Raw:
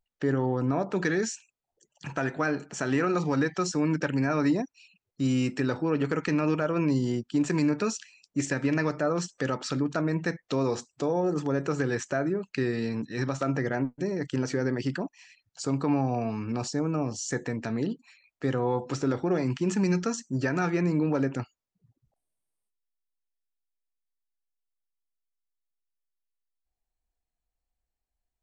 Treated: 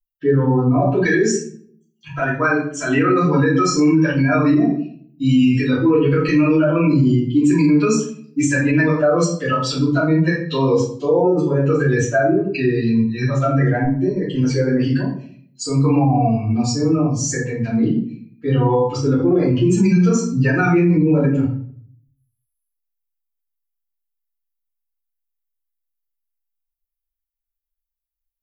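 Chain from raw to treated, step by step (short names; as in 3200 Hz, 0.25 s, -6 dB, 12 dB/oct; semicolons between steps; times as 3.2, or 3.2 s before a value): per-bin expansion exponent 2; shoebox room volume 70 m³, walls mixed, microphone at 2.8 m; maximiser +12 dB; gain -6.5 dB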